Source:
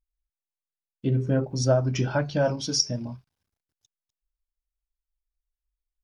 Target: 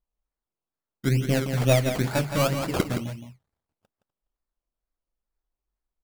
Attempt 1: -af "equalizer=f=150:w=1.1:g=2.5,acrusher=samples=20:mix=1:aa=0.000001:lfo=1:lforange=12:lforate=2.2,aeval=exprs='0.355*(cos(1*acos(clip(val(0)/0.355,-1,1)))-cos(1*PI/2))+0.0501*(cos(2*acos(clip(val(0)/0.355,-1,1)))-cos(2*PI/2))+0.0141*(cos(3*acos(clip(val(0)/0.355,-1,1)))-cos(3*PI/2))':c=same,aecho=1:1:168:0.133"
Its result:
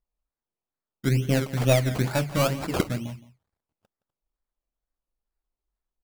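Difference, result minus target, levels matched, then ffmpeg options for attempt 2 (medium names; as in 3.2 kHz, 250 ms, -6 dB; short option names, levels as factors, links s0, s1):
echo-to-direct -9.5 dB
-af "equalizer=f=150:w=1.1:g=2.5,acrusher=samples=20:mix=1:aa=0.000001:lfo=1:lforange=12:lforate=2.2,aeval=exprs='0.355*(cos(1*acos(clip(val(0)/0.355,-1,1)))-cos(1*PI/2))+0.0501*(cos(2*acos(clip(val(0)/0.355,-1,1)))-cos(2*PI/2))+0.0141*(cos(3*acos(clip(val(0)/0.355,-1,1)))-cos(3*PI/2))':c=same,aecho=1:1:168:0.398"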